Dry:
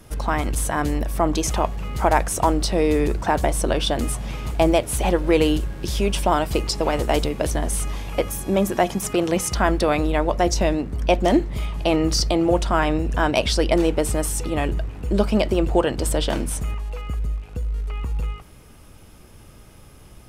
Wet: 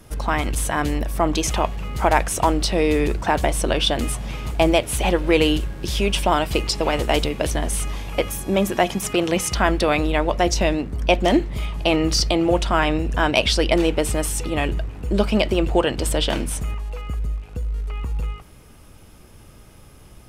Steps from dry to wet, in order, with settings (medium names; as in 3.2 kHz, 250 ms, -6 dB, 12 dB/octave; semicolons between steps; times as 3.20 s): dynamic bell 2.8 kHz, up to +6 dB, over -41 dBFS, Q 1.1